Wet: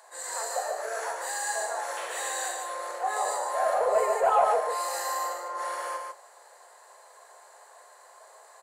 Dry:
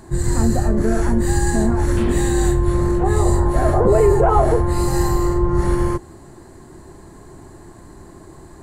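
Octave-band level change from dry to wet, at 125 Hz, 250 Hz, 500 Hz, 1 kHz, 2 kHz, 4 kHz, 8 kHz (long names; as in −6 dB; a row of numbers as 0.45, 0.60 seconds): below −40 dB, below −35 dB, −10.0 dB, −3.5 dB, −3.5 dB, −3.0 dB, −3.5 dB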